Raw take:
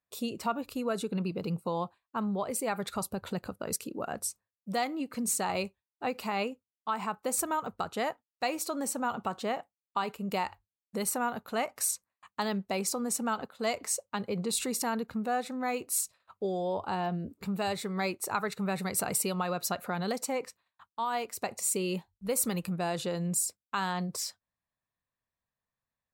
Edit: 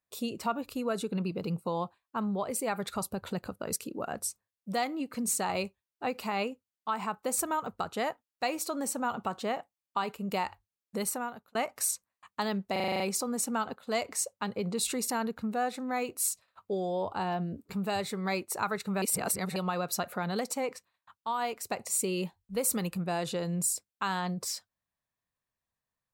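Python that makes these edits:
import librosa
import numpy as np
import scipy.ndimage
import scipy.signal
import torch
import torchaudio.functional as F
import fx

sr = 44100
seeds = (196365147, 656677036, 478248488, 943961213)

y = fx.edit(x, sr, fx.fade_out_span(start_s=11.01, length_s=0.54),
    fx.stutter(start_s=12.72, slice_s=0.04, count=8),
    fx.reverse_span(start_s=18.74, length_s=0.54), tone=tone)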